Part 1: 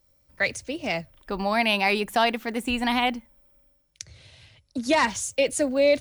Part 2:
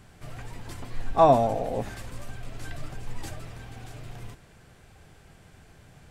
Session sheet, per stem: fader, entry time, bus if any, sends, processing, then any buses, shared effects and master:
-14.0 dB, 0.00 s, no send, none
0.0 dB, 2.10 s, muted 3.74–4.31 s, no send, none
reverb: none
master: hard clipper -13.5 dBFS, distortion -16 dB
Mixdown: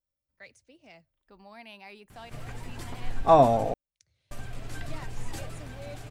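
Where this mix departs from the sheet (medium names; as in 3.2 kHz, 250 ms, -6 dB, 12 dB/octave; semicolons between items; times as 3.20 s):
stem 1 -14.0 dB -> -25.0 dB; master: missing hard clipper -13.5 dBFS, distortion -16 dB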